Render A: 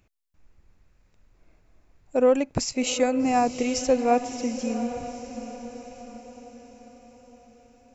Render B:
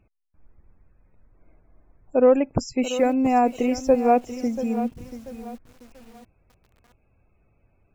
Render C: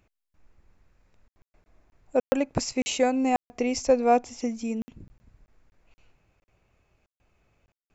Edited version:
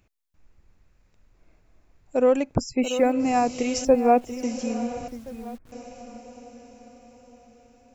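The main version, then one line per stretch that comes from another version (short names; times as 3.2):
A
2.55–3.12 from B
3.85–4.43 from B
5.08–5.72 from B
not used: C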